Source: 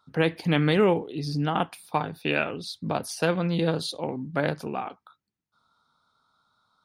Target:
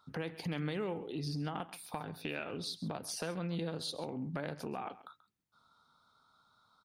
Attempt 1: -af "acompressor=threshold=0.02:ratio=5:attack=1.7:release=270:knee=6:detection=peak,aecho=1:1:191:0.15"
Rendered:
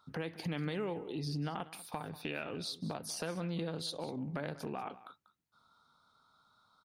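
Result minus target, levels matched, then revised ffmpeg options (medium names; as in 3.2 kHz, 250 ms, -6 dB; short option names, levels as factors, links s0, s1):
echo 57 ms late
-af "acompressor=threshold=0.02:ratio=5:attack=1.7:release=270:knee=6:detection=peak,aecho=1:1:134:0.15"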